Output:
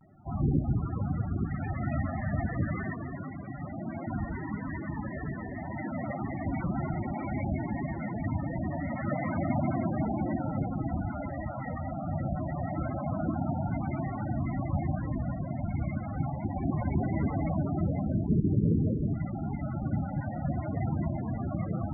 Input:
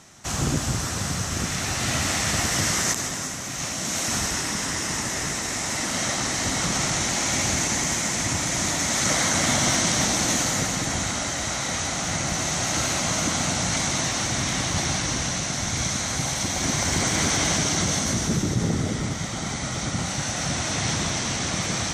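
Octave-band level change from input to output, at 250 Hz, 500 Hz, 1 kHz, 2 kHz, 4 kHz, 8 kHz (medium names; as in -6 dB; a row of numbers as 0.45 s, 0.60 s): -2.0 dB, -5.5 dB, -8.0 dB, -16.5 dB, under -40 dB, under -40 dB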